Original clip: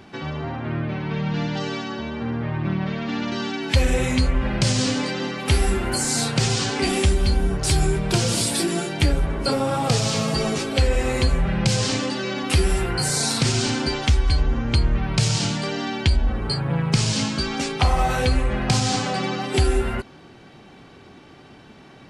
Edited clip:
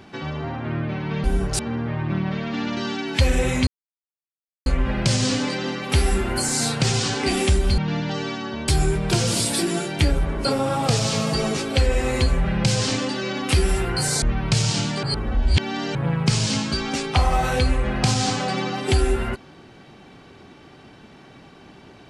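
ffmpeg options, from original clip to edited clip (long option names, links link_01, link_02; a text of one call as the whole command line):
ffmpeg -i in.wav -filter_complex "[0:a]asplit=9[link_01][link_02][link_03][link_04][link_05][link_06][link_07][link_08][link_09];[link_01]atrim=end=1.242[link_10];[link_02]atrim=start=7.338:end=7.692[link_11];[link_03]atrim=start=2.138:end=4.22,asetpts=PTS-STARTPTS,afade=type=out:start_time=2.078:duration=0.004:curve=hsin,apad=pad_dur=0.99[link_12];[link_04]atrim=start=4.22:end=7.342,asetpts=PTS-STARTPTS,afade=type=in:duration=0.004:curve=hsin[link_13];[link_05]atrim=start=1.238:end=2.142[link_14];[link_06]atrim=start=7.688:end=13.232[link_15];[link_07]atrim=start=14.878:end=15.692[link_16];[link_08]atrim=start=15.688:end=16.612,asetpts=PTS-STARTPTS,areverse[link_17];[link_09]atrim=start=16.608[link_18];[link_10][link_11]acrossfade=duration=0.004:curve1=hsin:curve2=hsin[link_19];[link_12][link_13]concat=n=2:v=0:a=1[link_20];[link_19][link_20]acrossfade=duration=0.004:curve1=hsin:curve2=hsin[link_21];[link_21][link_14]acrossfade=duration=0.004:curve1=hsin:curve2=hsin[link_22];[link_22][link_15]acrossfade=duration=0.004:curve1=hsin:curve2=hsin[link_23];[link_23][link_16]acrossfade=duration=0.004:curve1=hsin:curve2=hsin[link_24];[link_24][link_17]acrossfade=duration=0.004:curve1=hsin:curve2=hsin[link_25];[link_25][link_18]acrossfade=duration=0.004:curve1=hsin:curve2=hsin" out.wav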